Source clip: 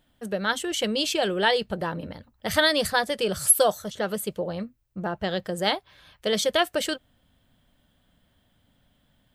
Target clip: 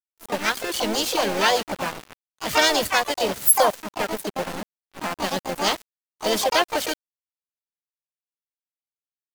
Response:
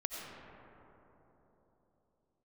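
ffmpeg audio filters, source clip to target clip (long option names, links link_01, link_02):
-filter_complex "[0:a]asplit=2[link_01][link_02];[link_02]adelay=128,lowpass=frequency=3300:poles=1,volume=-16dB,asplit=2[link_03][link_04];[link_04]adelay=128,lowpass=frequency=3300:poles=1,volume=0.15[link_05];[link_01][link_03][link_05]amix=inputs=3:normalize=0,aeval=exprs='val(0)*gte(abs(val(0)),0.0447)':channel_layout=same,asplit=4[link_06][link_07][link_08][link_09];[link_07]asetrate=52444,aresample=44100,atempo=0.840896,volume=-9dB[link_10];[link_08]asetrate=66075,aresample=44100,atempo=0.66742,volume=-2dB[link_11];[link_09]asetrate=88200,aresample=44100,atempo=0.5,volume=-12dB[link_12];[link_06][link_10][link_11][link_12]amix=inputs=4:normalize=0"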